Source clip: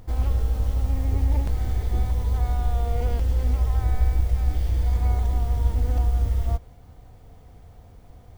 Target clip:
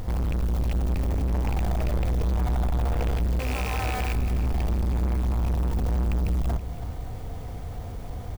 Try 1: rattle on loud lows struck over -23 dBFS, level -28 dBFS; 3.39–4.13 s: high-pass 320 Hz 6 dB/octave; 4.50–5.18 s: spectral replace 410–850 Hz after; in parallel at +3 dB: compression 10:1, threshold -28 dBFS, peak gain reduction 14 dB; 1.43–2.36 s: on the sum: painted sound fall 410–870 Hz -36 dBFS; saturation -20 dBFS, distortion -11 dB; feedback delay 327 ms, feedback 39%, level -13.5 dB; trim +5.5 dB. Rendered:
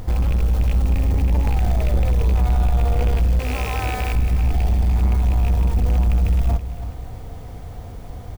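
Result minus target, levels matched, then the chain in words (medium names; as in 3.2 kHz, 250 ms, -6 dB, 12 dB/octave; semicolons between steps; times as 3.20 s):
saturation: distortion -5 dB
rattle on loud lows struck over -23 dBFS, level -28 dBFS; 3.39–4.13 s: high-pass 320 Hz 6 dB/octave; 4.50–5.18 s: spectral replace 410–850 Hz after; in parallel at +3 dB: compression 10:1, threshold -28 dBFS, peak gain reduction 14 dB; 1.43–2.36 s: on the sum: painted sound fall 410–870 Hz -36 dBFS; saturation -29 dBFS, distortion -5 dB; feedback delay 327 ms, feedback 39%, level -13.5 dB; trim +5.5 dB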